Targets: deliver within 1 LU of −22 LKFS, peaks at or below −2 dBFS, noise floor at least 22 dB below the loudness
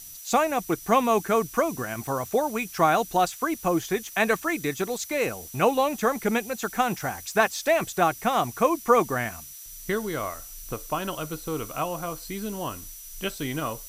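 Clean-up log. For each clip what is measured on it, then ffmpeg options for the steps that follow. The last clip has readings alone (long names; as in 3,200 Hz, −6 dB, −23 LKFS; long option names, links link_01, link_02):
interfering tone 5,900 Hz; level of the tone −47 dBFS; background noise floor −43 dBFS; target noise floor −48 dBFS; integrated loudness −26.0 LKFS; sample peak −7.5 dBFS; target loudness −22.0 LKFS
→ -af "bandreject=frequency=5900:width=30"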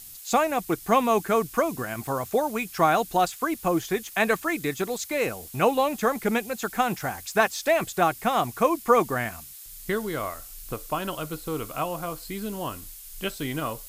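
interfering tone none found; background noise floor −44 dBFS; target noise floor −48 dBFS
→ -af "afftdn=noise_reduction=6:noise_floor=-44"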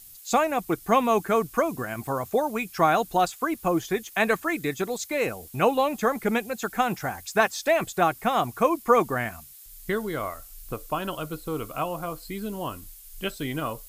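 background noise floor −48 dBFS; integrated loudness −26.0 LKFS; sample peak −7.5 dBFS; target loudness −22.0 LKFS
→ -af "volume=4dB"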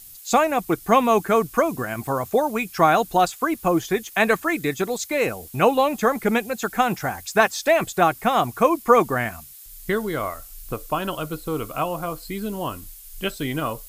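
integrated loudness −22.0 LKFS; sample peak −3.5 dBFS; background noise floor −44 dBFS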